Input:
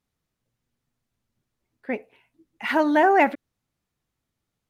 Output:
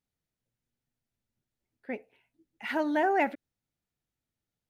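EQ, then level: bell 1100 Hz -7 dB 0.3 oct; -8.0 dB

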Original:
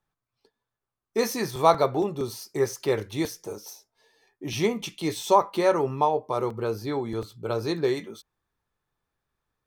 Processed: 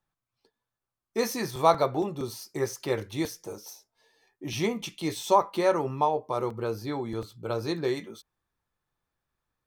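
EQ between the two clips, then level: notch 420 Hz, Q 12; -2.0 dB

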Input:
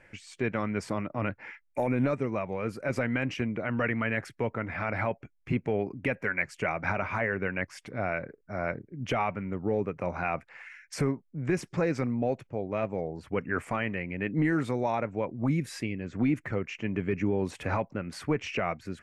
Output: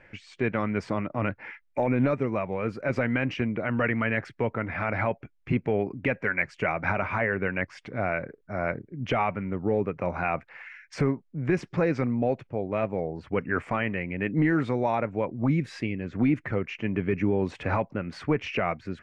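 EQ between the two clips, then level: LPF 4000 Hz 12 dB/oct; +3.0 dB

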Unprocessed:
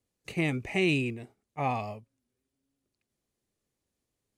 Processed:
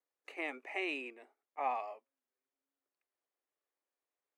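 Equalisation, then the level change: brick-wall FIR high-pass 240 Hz; three-band isolator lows -17 dB, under 560 Hz, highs -15 dB, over 2200 Hz; -2.0 dB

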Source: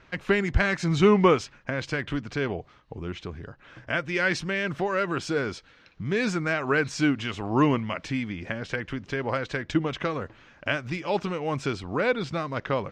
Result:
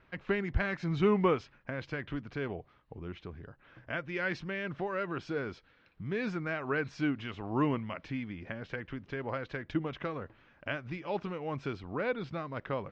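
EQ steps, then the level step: air absorption 200 m; -7.5 dB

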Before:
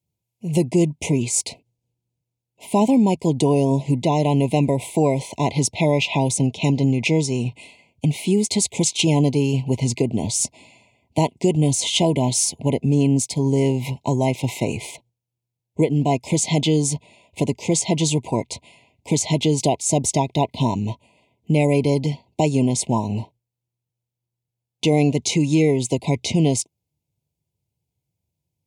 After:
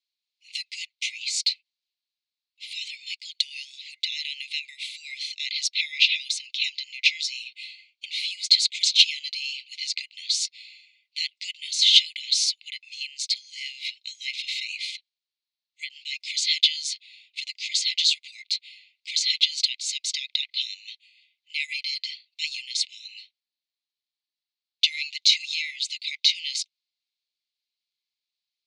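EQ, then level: brick-wall FIR high-pass 1600 Hz; synth low-pass 4200 Hz, resonance Q 4.7; -1.0 dB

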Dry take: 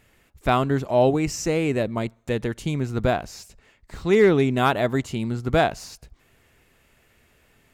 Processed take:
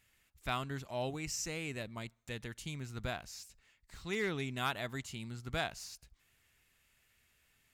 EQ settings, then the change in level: passive tone stack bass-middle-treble 5-5-5; -1.0 dB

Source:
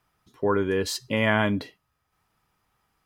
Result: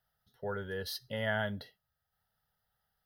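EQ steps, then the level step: high shelf 9500 Hz +10.5 dB; fixed phaser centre 1600 Hz, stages 8; -8.5 dB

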